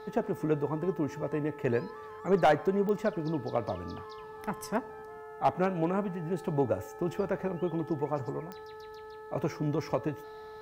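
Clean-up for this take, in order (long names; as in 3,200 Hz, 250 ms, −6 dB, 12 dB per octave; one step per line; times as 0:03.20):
clipped peaks rebuilt −16.5 dBFS
click removal
hum removal 432.5 Hz, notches 4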